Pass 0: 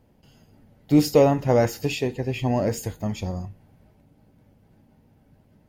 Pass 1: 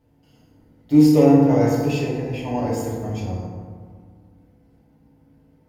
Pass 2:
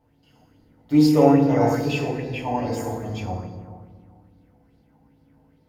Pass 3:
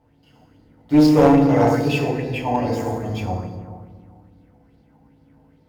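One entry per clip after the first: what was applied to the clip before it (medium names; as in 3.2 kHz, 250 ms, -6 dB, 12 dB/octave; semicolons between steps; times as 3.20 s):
FDN reverb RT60 1.8 s, low-frequency decay 1.25×, high-frequency decay 0.4×, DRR -5.5 dB; trim -7 dB
sweeping bell 2.4 Hz 750–4400 Hz +11 dB; trim -3 dB
median filter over 5 samples; one-sided clip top -15 dBFS; trim +4 dB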